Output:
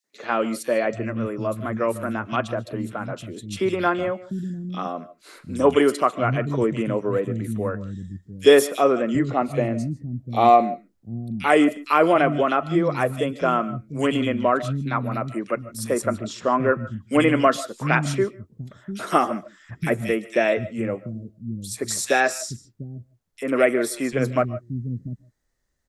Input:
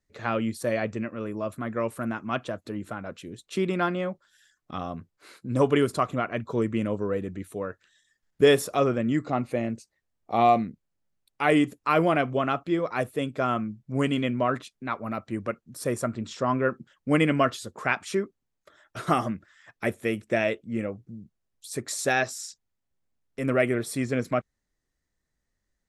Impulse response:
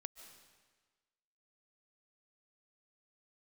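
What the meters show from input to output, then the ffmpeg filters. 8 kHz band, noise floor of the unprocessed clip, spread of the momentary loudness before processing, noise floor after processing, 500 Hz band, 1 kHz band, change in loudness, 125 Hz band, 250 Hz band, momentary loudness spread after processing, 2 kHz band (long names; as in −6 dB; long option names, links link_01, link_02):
+6.0 dB, −81 dBFS, 14 LU, −62 dBFS, +5.5 dB, +5.5 dB, +4.5 dB, +4.5 dB, +4.0 dB, 16 LU, +4.0 dB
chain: -filter_complex "[0:a]acrossover=split=210|2600[link_01][link_02][link_03];[link_02]adelay=40[link_04];[link_01]adelay=740[link_05];[link_05][link_04][link_03]amix=inputs=3:normalize=0,asplit=2[link_06][link_07];[1:a]atrim=start_sample=2205,afade=type=out:start_time=0.21:duration=0.01,atrim=end_sample=9702[link_08];[link_07][link_08]afir=irnorm=-1:irlink=0,volume=11dB[link_09];[link_06][link_09]amix=inputs=2:normalize=0,volume=-3.5dB"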